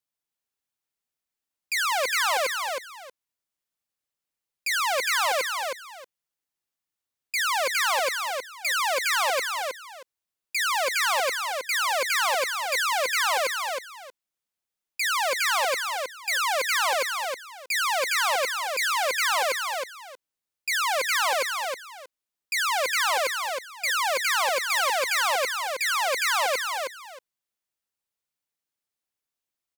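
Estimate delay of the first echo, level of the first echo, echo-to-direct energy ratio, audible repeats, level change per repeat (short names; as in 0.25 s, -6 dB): 0.316 s, -4.5 dB, -4.5 dB, 2, -13.5 dB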